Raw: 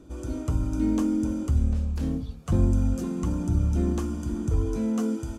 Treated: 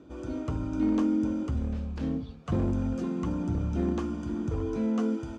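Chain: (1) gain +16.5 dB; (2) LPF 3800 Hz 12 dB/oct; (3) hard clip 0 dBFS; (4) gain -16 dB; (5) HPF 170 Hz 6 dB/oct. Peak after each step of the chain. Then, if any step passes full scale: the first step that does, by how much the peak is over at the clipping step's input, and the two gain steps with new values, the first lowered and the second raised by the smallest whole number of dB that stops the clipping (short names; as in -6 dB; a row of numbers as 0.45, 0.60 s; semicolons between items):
+5.5, +5.5, 0.0, -16.0, -16.0 dBFS; step 1, 5.5 dB; step 1 +10.5 dB, step 4 -10 dB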